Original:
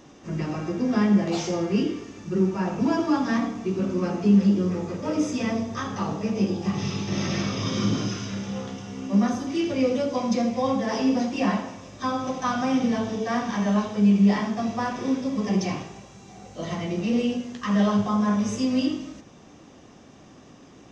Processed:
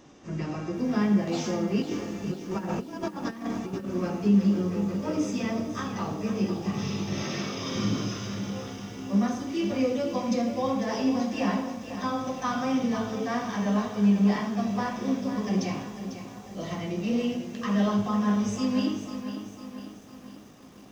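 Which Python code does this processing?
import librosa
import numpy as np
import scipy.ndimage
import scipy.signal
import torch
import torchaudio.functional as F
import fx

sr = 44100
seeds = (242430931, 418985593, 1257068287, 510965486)

y = fx.over_compress(x, sr, threshold_db=-29.0, ratio=-0.5, at=(1.82, 3.88))
y = fx.highpass(y, sr, hz=200.0, slope=12, at=(7.23, 7.76))
y = fx.echo_crushed(y, sr, ms=498, feedback_pct=55, bits=8, wet_db=-10)
y = y * 10.0 ** (-3.5 / 20.0)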